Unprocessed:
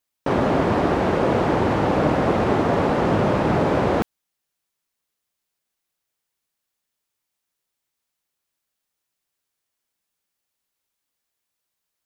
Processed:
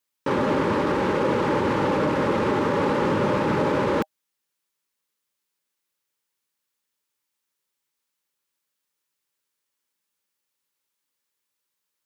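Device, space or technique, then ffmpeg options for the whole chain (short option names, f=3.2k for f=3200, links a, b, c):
PA system with an anti-feedback notch: -af "highpass=f=180:p=1,asuperstop=centerf=700:order=12:qfactor=4.2,alimiter=limit=-14dB:level=0:latency=1:release=12"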